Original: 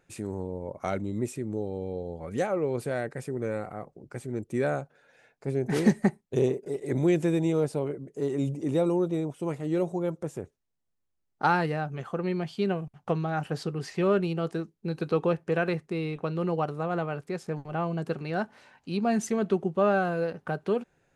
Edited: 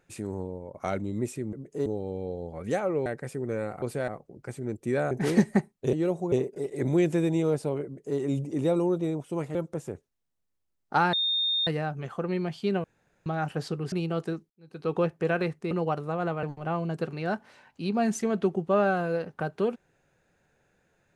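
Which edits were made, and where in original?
0:00.41–0:00.74: fade out, to −7.5 dB
0:02.73–0:02.99: move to 0:03.75
0:04.78–0:05.60: remove
0:07.95–0:08.28: duplicate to 0:01.53
0:09.65–0:10.04: move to 0:06.42
0:11.62: insert tone 3,660 Hz −23.5 dBFS 0.54 s
0:12.79–0:13.21: fill with room tone
0:13.87–0:14.19: remove
0:14.77–0:15.24: fade in quadratic
0:15.98–0:16.42: remove
0:17.14–0:17.51: remove

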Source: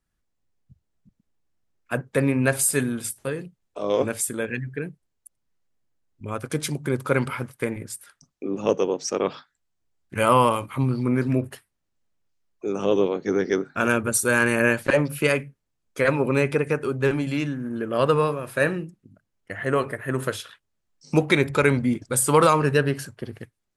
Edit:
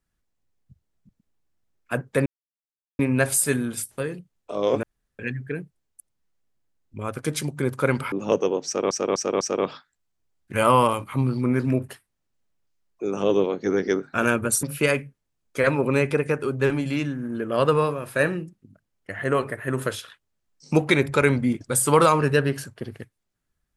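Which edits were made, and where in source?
0:02.26: splice in silence 0.73 s
0:04.10–0:04.46: fill with room tone
0:07.39–0:08.49: remove
0:09.03–0:09.28: repeat, 4 plays
0:14.25–0:15.04: remove

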